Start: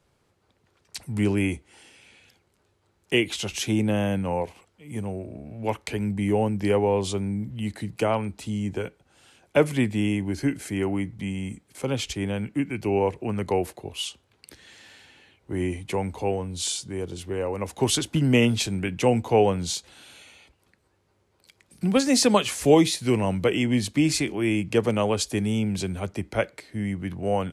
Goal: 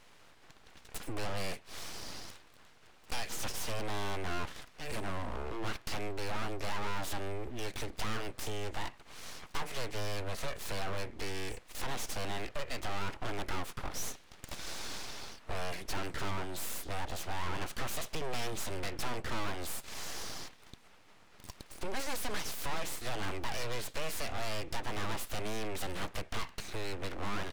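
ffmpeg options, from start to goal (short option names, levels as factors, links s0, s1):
-filter_complex "[0:a]acompressor=threshold=0.0141:ratio=3,asplit=2[s0][s1];[s1]highpass=f=720:p=1,volume=25.1,asoftclip=type=tanh:threshold=0.15[s2];[s0][s2]amix=inputs=2:normalize=0,lowpass=f=2900:p=1,volume=0.501,aeval=exprs='abs(val(0))':c=same,volume=0.531"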